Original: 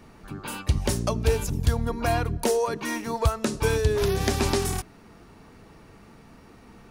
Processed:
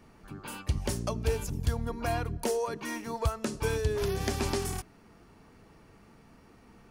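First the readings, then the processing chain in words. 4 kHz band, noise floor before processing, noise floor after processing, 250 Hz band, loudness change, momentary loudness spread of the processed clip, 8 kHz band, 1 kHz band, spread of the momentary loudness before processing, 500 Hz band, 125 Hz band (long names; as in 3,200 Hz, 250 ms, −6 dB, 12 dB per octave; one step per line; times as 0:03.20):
−7.0 dB, −51 dBFS, −58 dBFS, −6.5 dB, −6.5 dB, 9 LU, −6.5 dB, −6.5 dB, 9 LU, −6.5 dB, −6.5 dB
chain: notch filter 3,800 Hz, Q 19
level −6.5 dB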